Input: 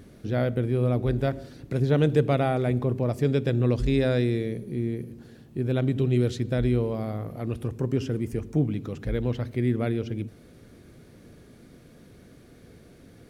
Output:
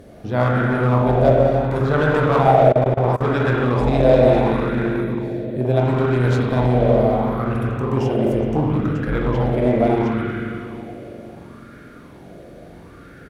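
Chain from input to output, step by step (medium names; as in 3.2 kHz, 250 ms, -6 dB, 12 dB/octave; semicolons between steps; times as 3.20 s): spring tank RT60 3.2 s, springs 40/45 ms, chirp 55 ms, DRR -4 dB; one-sided clip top -21.5 dBFS, bottom -8.5 dBFS; doubling 23 ms -12.5 dB; tape echo 89 ms, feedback 79%, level -14.5 dB, low-pass 2.4 kHz; 2.72–3.32 s: level held to a coarse grid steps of 21 dB; loudness maximiser +10 dB; sweeping bell 0.72 Hz 590–1500 Hz +14 dB; trim -8 dB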